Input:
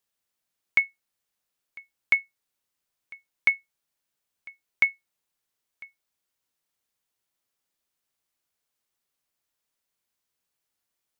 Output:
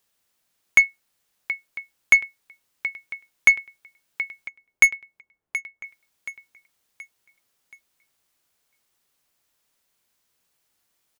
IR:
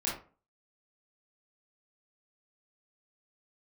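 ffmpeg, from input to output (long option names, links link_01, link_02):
-filter_complex "[0:a]asettb=1/sr,asplit=3[link_01][link_02][link_03];[link_01]atrim=end=4.484[link_04];[link_02]atrim=start=4.48:end=5.84,asetpts=PTS-STARTPTS,afade=type=in:duration=0.004:curve=qsin,afade=type=out:start_time=1.356:duration=0.004:curve=qsin,adynamicsmooth=sensitivity=4:basefreq=980[link_05];[link_03]atrim=start=5.836[link_06];[link_04][link_05]acrossfade=duration=0.004:curve1=hsin:curve2=qsin[link_07];[link_07][link_06]acrossfade=duration=0.004:curve1=qsin:curve2=hsin,aecho=1:1:726|1452|2178|2904:0.15|0.0658|0.029|0.0127,aeval=exprs='0.355*(cos(1*acos(clip(val(0)/0.355,-1,1)))-cos(1*PI/2))+0.0398*(cos(5*acos(clip(val(0)/0.355,-1,1)))-cos(5*PI/2))+0.00447*(cos(8*acos(clip(val(0)/0.355,-1,1)))-cos(8*PI/2))':channel_layout=same,volume=6dB"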